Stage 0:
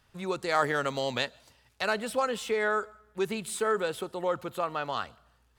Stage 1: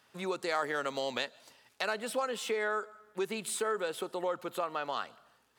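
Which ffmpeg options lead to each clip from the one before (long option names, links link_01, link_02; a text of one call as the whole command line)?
ffmpeg -i in.wav -af "highpass=240,acompressor=threshold=-37dB:ratio=2,volume=2.5dB" out.wav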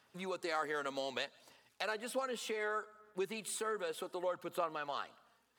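ffmpeg -i in.wav -af "aphaser=in_gain=1:out_gain=1:delay=4.4:decay=0.32:speed=0.65:type=sinusoidal,volume=-5.5dB" out.wav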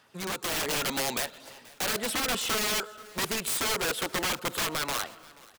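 ffmpeg -i in.wav -af "aeval=exprs='(mod(63.1*val(0)+1,2)-1)/63.1':channel_layout=same,dynaudnorm=framelen=150:gausssize=7:maxgain=5dB,aecho=1:1:481|962|1443:0.0708|0.034|0.0163,volume=8dB" out.wav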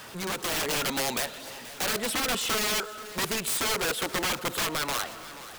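ffmpeg -i in.wav -af "aeval=exprs='val(0)+0.5*0.0106*sgn(val(0))':channel_layout=same" out.wav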